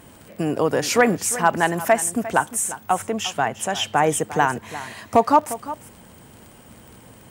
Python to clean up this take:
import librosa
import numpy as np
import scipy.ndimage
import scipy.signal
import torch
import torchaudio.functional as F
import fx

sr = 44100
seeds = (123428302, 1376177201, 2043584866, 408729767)

y = fx.fix_declip(x, sr, threshold_db=-4.5)
y = fx.fix_declick_ar(y, sr, threshold=6.5)
y = fx.fix_echo_inverse(y, sr, delay_ms=352, level_db=-15.0)